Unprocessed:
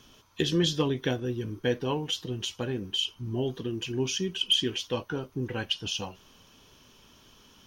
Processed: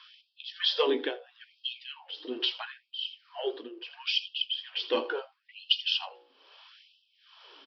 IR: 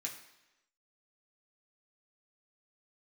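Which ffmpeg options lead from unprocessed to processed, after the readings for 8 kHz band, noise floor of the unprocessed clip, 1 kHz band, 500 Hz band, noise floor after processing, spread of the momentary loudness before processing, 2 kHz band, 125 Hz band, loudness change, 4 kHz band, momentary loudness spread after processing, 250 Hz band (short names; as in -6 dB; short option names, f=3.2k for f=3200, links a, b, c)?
under -20 dB, -58 dBFS, -0.5 dB, -2.0 dB, -73 dBFS, 9 LU, 0.0 dB, under -40 dB, -1.5 dB, 0.0 dB, 17 LU, -11.0 dB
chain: -filter_complex "[0:a]aecho=1:1:82:0.141,tremolo=f=1.2:d=0.86,bandreject=f=60.72:t=h:w=4,bandreject=f=121.44:t=h:w=4,bandreject=f=182.16:t=h:w=4,bandreject=f=242.88:t=h:w=4,bandreject=f=303.6:t=h:w=4,bandreject=f=364.32:t=h:w=4,bandreject=f=425.04:t=h:w=4,bandreject=f=485.76:t=h:w=4,bandreject=f=546.48:t=h:w=4,bandreject=f=607.2:t=h:w=4,bandreject=f=667.92:t=h:w=4,bandreject=f=728.64:t=h:w=4,bandreject=f=789.36:t=h:w=4,bandreject=f=850.08:t=h:w=4,aresample=11025,aresample=44100,acrossover=split=490|1400[a][b][c];[b]asoftclip=type=tanh:threshold=-34dB[d];[a][d][c]amix=inputs=3:normalize=0,afftfilt=real='re*gte(b*sr/1024,250*pow(2600/250,0.5+0.5*sin(2*PI*0.75*pts/sr)))':imag='im*gte(b*sr/1024,250*pow(2600/250,0.5+0.5*sin(2*PI*0.75*pts/sr)))':win_size=1024:overlap=0.75,volume=6dB"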